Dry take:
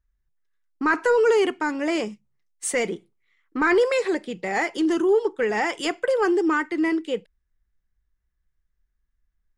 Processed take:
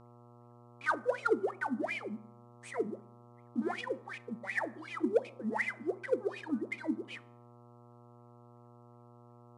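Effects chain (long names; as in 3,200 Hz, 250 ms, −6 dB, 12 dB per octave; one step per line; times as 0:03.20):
one scale factor per block 3 bits
notch filter 2,700 Hz, Q 7
LFO wah 2.7 Hz 210–2,600 Hz, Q 16
reverb reduction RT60 0.98 s
convolution reverb RT60 0.65 s, pre-delay 4 ms, DRR 16 dB
dynamic equaliser 1,400 Hz, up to −3 dB, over −39 dBFS, Q 1.6
in parallel at −5 dB: soft clipping −29 dBFS, distortion −11 dB
on the sum: hum with harmonics 120 Hz, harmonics 11, −57 dBFS −4 dB per octave
high-shelf EQ 2,100 Hz +3.5 dB
IMA ADPCM 88 kbit/s 22,050 Hz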